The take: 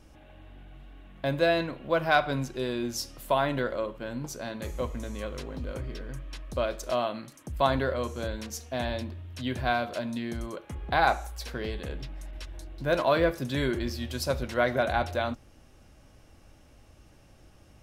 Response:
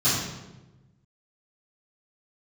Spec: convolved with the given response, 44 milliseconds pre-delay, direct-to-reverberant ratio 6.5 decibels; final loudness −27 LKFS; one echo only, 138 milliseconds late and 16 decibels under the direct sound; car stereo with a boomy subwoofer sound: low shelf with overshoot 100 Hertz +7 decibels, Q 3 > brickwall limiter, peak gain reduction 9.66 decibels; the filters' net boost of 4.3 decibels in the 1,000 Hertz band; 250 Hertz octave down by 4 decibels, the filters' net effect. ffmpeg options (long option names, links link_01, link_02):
-filter_complex "[0:a]equalizer=frequency=250:width_type=o:gain=-4,equalizer=frequency=1000:width_type=o:gain=6.5,aecho=1:1:138:0.158,asplit=2[link_01][link_02];[1:a]atrim=start_sample=2205,adelay=44[link_03];[link_02][link_03]afir=irnorm=-1:irlink=0,volume=-21dB[link_04];[link_01][link_04]amix=inputs=2:normalize=0,lowshelf=frequency=100:width_type=q:width=3:gain=7,volume=1dB,alimiter=limit=-14.5dB:level=0:latency=1"